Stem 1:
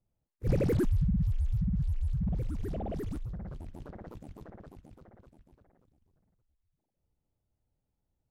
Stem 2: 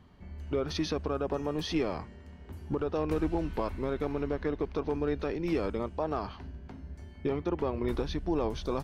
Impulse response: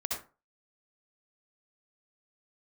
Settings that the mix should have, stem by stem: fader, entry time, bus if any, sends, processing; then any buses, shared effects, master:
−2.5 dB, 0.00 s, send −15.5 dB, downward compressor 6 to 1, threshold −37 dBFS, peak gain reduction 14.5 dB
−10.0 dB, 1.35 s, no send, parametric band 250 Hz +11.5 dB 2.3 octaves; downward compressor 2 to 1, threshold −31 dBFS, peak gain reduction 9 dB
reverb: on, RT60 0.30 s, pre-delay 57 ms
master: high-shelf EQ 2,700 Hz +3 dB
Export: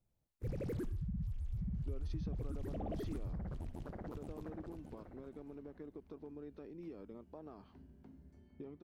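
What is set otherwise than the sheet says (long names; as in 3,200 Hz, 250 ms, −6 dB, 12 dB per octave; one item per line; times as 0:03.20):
stem 2 −10.0 dB → −20.5 dB
master: missing high-shelf EQ 2,700 Hz +3 dB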